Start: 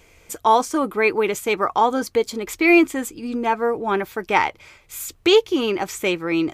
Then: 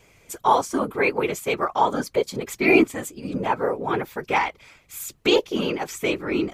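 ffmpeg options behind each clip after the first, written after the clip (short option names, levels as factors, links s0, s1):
-af "afftfilt=real='hypot(re,im)*cos(2*PI*random(0))':imag='hypot(re,im)*sin(2*PI*random(1))':win_size=512:overlap=0.75,volume=1.41"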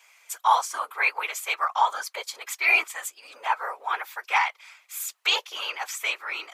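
-af "highpass=f=880:w=0.5412,highpass=f=880:w=1.3066,volume=1.19"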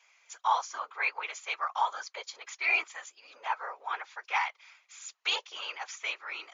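-af "volume=0.473" -ar 16000 -c:a libmp3lame -b:a 96k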